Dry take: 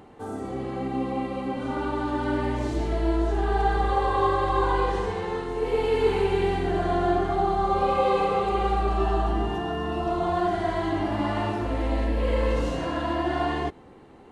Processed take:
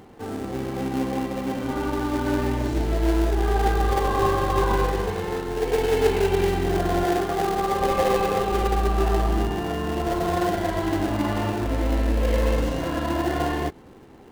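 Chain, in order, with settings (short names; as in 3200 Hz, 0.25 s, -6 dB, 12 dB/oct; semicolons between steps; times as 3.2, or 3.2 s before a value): in parallel at -6 dB: sample-rate reducer 1200 Hz, jitter 20%; 7.04–7.81 on the sum: low shelf 110 Hz -12 dB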